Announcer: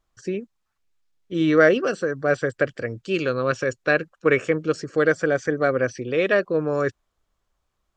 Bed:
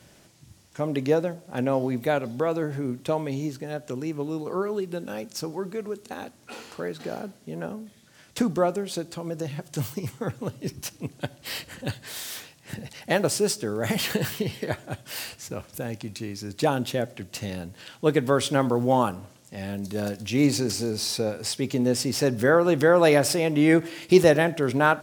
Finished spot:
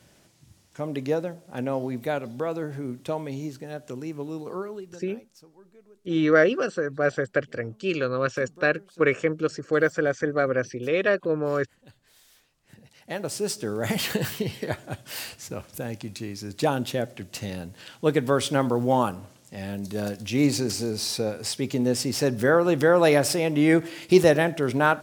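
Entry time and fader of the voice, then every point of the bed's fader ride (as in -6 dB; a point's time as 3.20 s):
4.75 s, -2.5 dB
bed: 4.50 s -3.5 dB
5.49 s -22.5 dB
12.37 s -22.5 dB
13.67 s -0.5 dB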